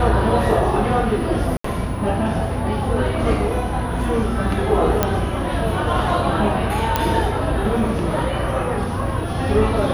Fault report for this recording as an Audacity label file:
1.570000	1.640000	dropout 74 ms
5.030000	5.030000	pop -2 dBFS
6.960000	6.960000	pop -3 dBFS

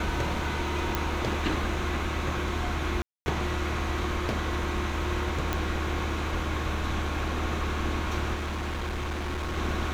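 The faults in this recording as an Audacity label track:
0.950000	0.950000	pop
3.020000	3.260000	dropout 240 ms
5.530000	5.530000	pop -12 dBFS
8.340000	9.580000	clipped -28.5 dBFS

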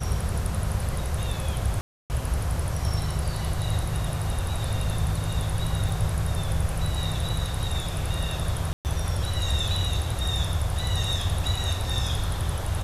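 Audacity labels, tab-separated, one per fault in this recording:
1.810000	2.100000	dropout 289 ms
5.890000	5.890000	dropout 3.1 ms
8.730000	8.850000	dropout 119 ms

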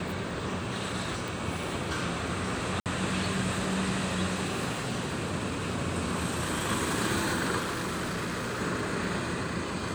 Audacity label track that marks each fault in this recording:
1.280000	1.280000	pop
2.800000	2.860000	dropout 58 ms
7.580000	8.610000	clipped -29.5 dBFS

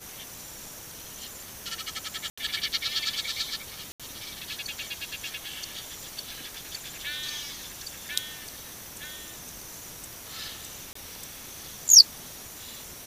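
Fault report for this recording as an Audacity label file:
2.300000	2.380000	dropout 75 ms
3.920000	4.000000	dropout 76 ms
10.930000	10.950000	dropout 24 ms

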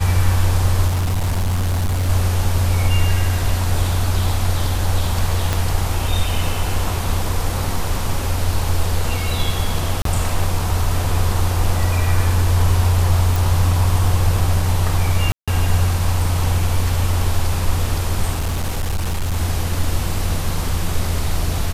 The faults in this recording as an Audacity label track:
0.870000	2.100000	clipped -15.5 dBFS
5.530000	5.530000	pop
10.020000	10.050000	dropout 33 ms
13.360000	13.360000	pop
15.320000	15.480000	dropout 156 ms
18.340000	19.370000	clipped -16.5 dBFS

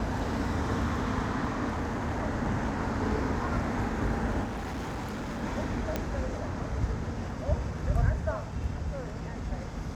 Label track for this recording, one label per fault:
1.700000	2.190000	clipped -27 dBFS
4.430000	5.440000	clipped -32 dBFS
5.960000	5.960000	pop -15 dBFS

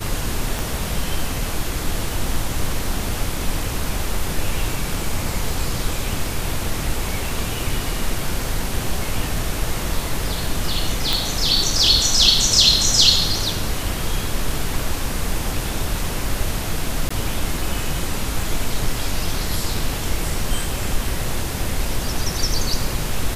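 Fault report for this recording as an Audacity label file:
0.590000	0.590000	pop
11.130000	11.130000	pop
17.090000	17.110000	dropout 15 ms

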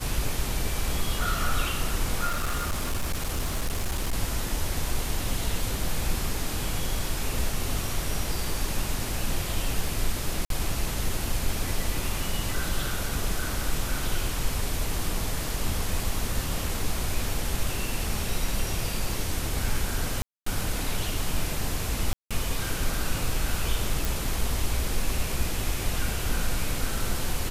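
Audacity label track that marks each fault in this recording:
2.270000	4.130000	clipped -23 dBFS
10.450000	10.500000	dropout 52 ms
20.220000	20.460000	dropout 244 ms
22.130000	22.310000	dropout 176 ms
24.050000	24.050000	pop

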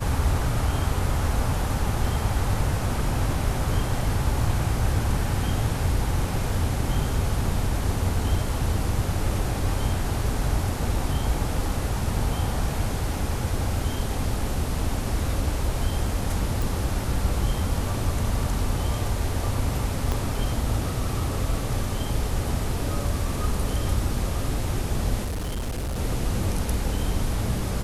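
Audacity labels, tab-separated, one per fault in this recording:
16.620000	16.620000	pop
20.120000	20.120000	pop -12 dBFS
25.240000	25.990000	clipped -25.5 dBFS

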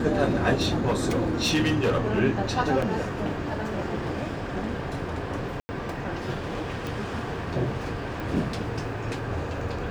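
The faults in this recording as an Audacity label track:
0.610000	2.200000	clipped -19 dBFS
2.820000	2.820000	dropout 4.3 ms
5.600000	5.690000	dropout 90 ms
6.870000	6.870000	pop
8.200000	8.200000	pop

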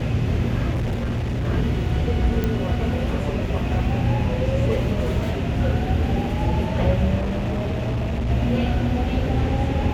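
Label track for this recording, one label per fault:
0.710000	1.450000	clipped -20.5 dBFS
2.440000	2.440000	pop -11 dBFS
7.180000	8.300000	clipped -20.5 dBFS

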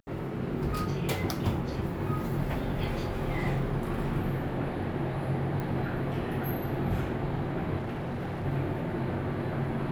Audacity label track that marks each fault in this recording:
5.600000	5.600000	pop -23 dBFS
7.770000	8.460000	clipped -30.5 dBFS

